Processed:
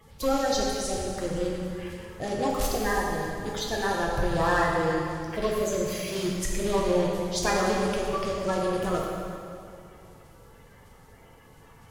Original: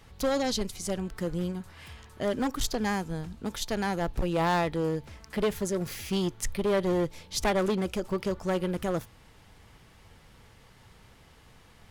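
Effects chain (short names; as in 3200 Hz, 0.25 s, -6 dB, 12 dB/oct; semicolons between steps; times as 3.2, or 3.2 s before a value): bin magnitudes rounded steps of 30 dB; bell 230 Hz -4 dB 1.3 oct; hard clip -21.5 dBFS, distortion -28 dB; plate-style reverb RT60 2.5 s, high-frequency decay 0.75×, DRR -3 dB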